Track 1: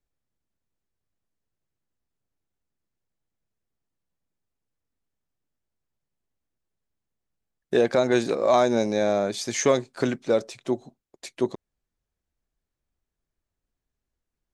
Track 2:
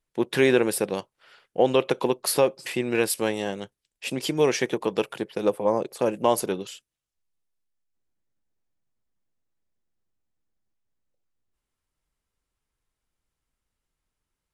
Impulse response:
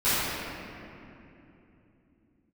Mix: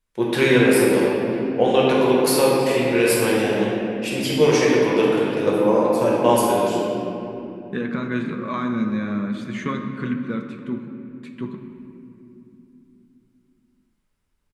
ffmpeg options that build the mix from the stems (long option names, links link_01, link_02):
-filter_complex "[0:a]firequalizer=gain_entry='entry(120,0);entry(170,11);entry(350,-6);entry(720,-21);entry(1100,2);entry(3400,-6);entry(5300,-23);entry(8700,-16)':delay=0.05:min_phase=1,volume=3dB,asplit=2[link_01][link_02];[link_02]volume=-21.5dB[link_03];[1:a]volume=3dB,asplit=2[link_04][link_05];[link_05]volume=-9dB[link_06];[2:a]atrim=start_sample=2205[link_07];[link_03][link_06]amix=inputs=2:normalize=0[link_08];[link_08][link_07]afir=irnorm=-1:irlink=0[link_09];[link_01][link_04][link_09]amix=inputs=3:normalize=0,bandreject=frequency=46.89:width_type=h:width=4,bandreject=frequency=93.78:width_type=h:width=4,bandreject=frequency=140.67:width_type=h:width=4,bandreject=frequency=187.56:width_type=h:width=4,bandreject=frequency=234.45:width_type=h:width=4,bandreject=frequency=281.34:width_type=h:width=4,bandreject=frequency=328.23:width_type=h:width=4,bandreject=frequency=375.12:width_type=h:width=4,bandreject=frequency=422.01:width_type=h:width=4,bandreject=frequency=468.9:width_type=h:width=4,bandreject=frequency=515.79:width_type=h:width=4,bandreject=frequency=562.68:width_type=h:width=4,bandreject=frequency=609.57:width_type=h:width=4,bandreject=frequency=656.46:width_type=h:width=4,bandreject=frequency=703.35:width_type=h:width=4,bandreject=frequency=750.24:width_type=h:width=4,bandreject=frequency=797.13:width_type=h:width=4,bandreject=frequency=844.02:width_type=h:width=4,bandreject=frequency=890.91:width_type=h:width=4,bandreject=frequency=937.8:width_type=h:width=4,bandreject=frequency=984.69:width_type=h:width=4,bandreject=frequency=1031.58:width_type=h:width=4,bandreject=frequency=1078.47:width_type=h:width=4,bandreject=frequency=1125.36:width_type=h:width=4,bandreject=frequency=1172.25:width_type=h:width=4,bandreject=frequency=1219.14:width_type=h:width=4,bandreject=frequency=1266.03:width_type=h:width=4,bandreject=frequency=1312.92:width_type=h:width=4,bandreject=frequency=1359.81:width_type=h:width=4,bandreject=frequency=1406.7:width_type=h:width=4,flanger=delay=3.7:depth=8.7:regen=-74:speed=0.51:shape=triangular"